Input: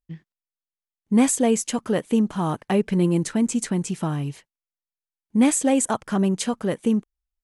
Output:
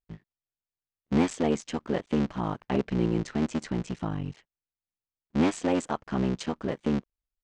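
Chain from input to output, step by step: cycle switcher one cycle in 3, muted; Bessel low-pass 4.4 kHz, order 6; trim -4.5 dB

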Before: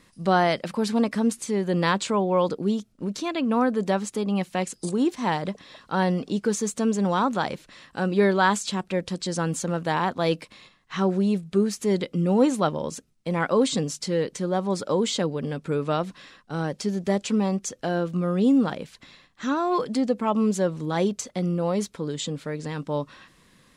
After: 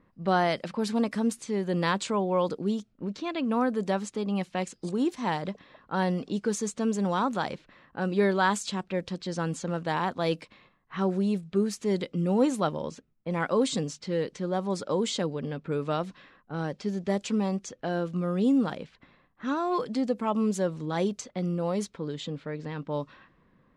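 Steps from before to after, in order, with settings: level-controlled noise filter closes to 1.2 kHz, open at -20 dBFS; trim -4 dB

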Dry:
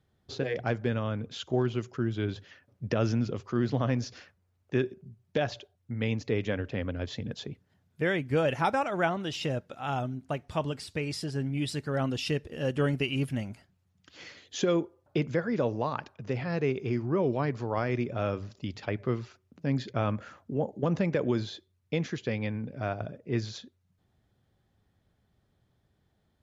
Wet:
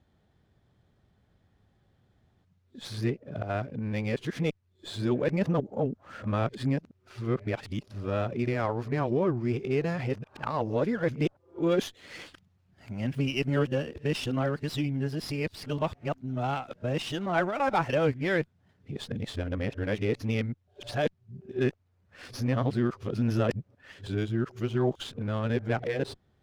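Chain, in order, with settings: reverse the whole clip; in parallel at -3 dB: compression, threshold -41 dBFS, peak gain reduction 18.5 dB; on the sum: distance through air 53 m; sliding maximum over 3 samples

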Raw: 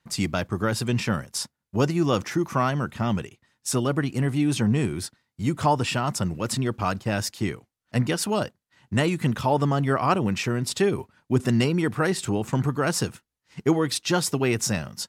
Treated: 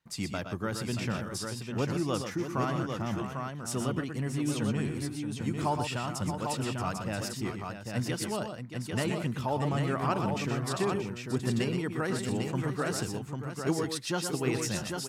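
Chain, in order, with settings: multi-tap echo 107/122/629/797 ms -16/-7.5/-10/-5 dB; trim -9 dB

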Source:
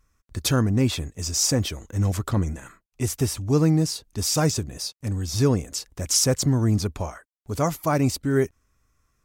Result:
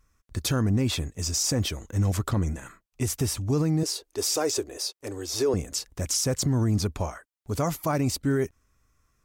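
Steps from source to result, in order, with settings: 3.83–5.54 s: resonant low shelf 260 Hz -13.5 dB, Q 3; peak limiter -16.5 dBFS, peak gain reduction 9 dB

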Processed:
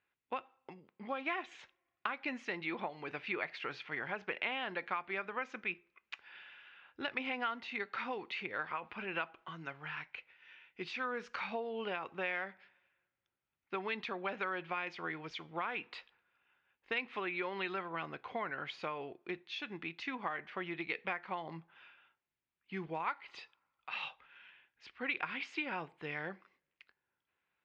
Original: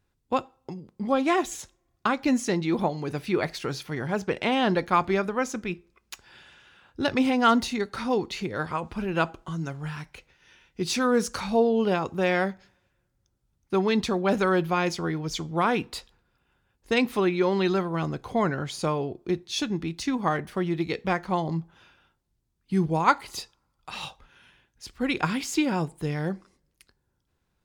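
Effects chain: high-pass 1.2 kHz 6 dB/octave; compression, threshold -33 dBFS, peak gain reduction 15 dB; four-pole ladder low-pass 3 kHz, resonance 40%; trim +5.5 dB

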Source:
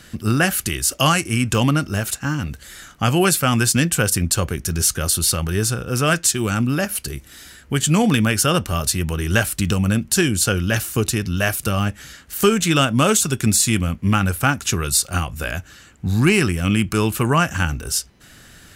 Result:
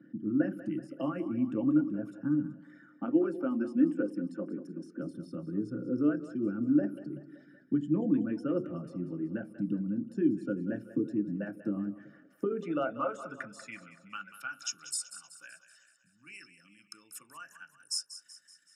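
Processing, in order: resonances exaggerated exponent 2; 2.89–5.00 s: high-pass 210 Hz 24 dB/octave; compression, threshold -19 dBFS, peak gain reduction 8.5 dB; band-pass sweep 320 Hz -> 7.7 kHz, 12.18–14.98 s; two-band feedback delay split 420 Hz, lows 82 ms, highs 189 ms, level -13 dB; reverberation RT60 0.15 s, pre-delay 3 ms, DRR 4.5 dB; trim -7.5 dB

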